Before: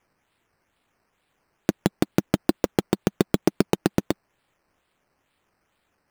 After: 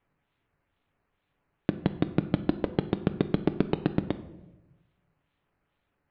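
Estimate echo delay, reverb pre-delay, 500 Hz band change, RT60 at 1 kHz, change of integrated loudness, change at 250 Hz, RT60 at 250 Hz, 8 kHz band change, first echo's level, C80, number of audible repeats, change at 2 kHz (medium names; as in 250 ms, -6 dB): no echo, 7 ms, -5.5 dB, 0.90 s, -4.5 dB, -4.0 dB, 1.3 s, under -40 dB, no echo, 16.5 dB, no echo, -7.0 dB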